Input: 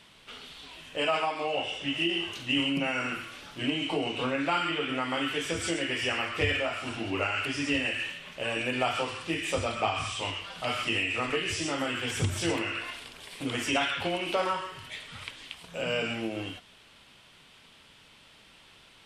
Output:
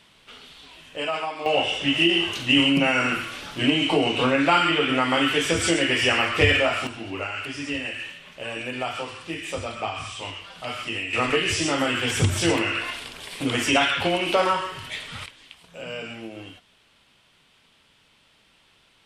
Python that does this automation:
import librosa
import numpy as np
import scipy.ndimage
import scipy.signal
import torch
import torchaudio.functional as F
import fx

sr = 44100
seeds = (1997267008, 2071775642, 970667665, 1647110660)

y = fx.gain(x, sr, db=fx.steps((0.0, 0.0), (1.46, 9.0), (6.87, -1.0), (11.13, 7.5), (15.26, -4.0)))